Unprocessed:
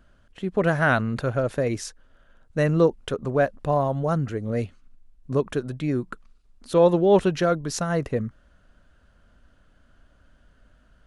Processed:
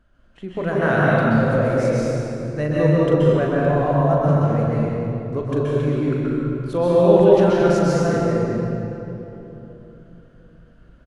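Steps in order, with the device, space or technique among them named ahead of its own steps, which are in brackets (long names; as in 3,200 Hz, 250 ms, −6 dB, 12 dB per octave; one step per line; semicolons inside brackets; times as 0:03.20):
double-tracking delay 40 ms −9 dB
swimming-pool hall (convolution reverb RT60 3.3 s, pre-delay 120 ms, DRR −7.5 dB; high-shelf EQ 4,800 Hz −7 dB)
level −4 dB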